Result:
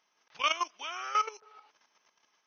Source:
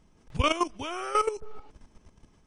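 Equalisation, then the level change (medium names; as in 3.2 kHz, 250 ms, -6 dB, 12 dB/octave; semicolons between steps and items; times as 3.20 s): high-pass 1.1 kHz 12 dB/octave; brick-wall FIR low-pass 6.5 kHz; 0.0 dB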